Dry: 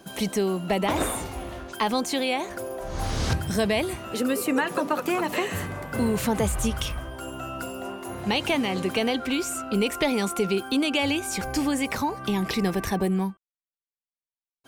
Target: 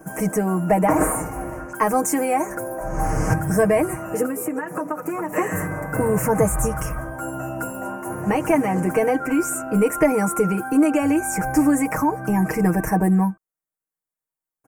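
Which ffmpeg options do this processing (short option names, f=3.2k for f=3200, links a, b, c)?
-filter_complex "[0:a]aecho=1:1:6.4:0.84,asplit=3[a][b][c];[a]afade=t=out:st=4.25:d=0.02[d];[b]acompressor=threshold=-27dB:ratio=10,afade=t=in:st=4.25:d=0.02,afade=t=out:st=5.35:d=0.02[e];[c]afade=t=in:st=5.35:d=0.02[f];[d][e][f]amix=inputs=3:normalize=0,asuperstop=centerf=3700:order=4:qfactor=0.66,asettb=1/sr,asplit=3[g][h][i];[g]atrim=end=1.734[j];[h]atrim=start=1.73:end=2.55,asetpts=PTS-STARTPTS,afade=t=in:d=0.004:c=qsin,afade=t=out:st=0.816:d=0.004:c=qsin,adynamicequalizer=threshold=0.00562:dfrequency=4200:dqfactor=0.7:tfrequency=4200:tqfactor=0.7:attack=5:release=100:ratio=0.375:range=3:mode=boostabove:tftype=highshelf[k];[i]atrim=start=2.546[l];[j][k]acrossfade=d=0.004:c1=hsin:c2=qsin[m];[m][l]acrossfade=d=0.004:c1=qsin:c2=hsin,volume=4.5dB"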